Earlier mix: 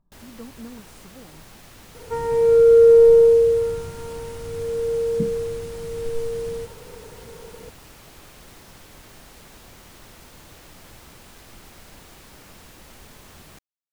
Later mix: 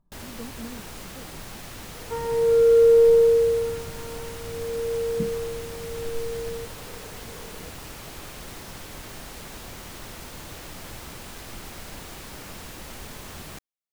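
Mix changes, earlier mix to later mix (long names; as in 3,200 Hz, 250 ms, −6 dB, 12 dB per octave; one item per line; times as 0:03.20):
first sound +6.5 dB
second sound −4.0 dB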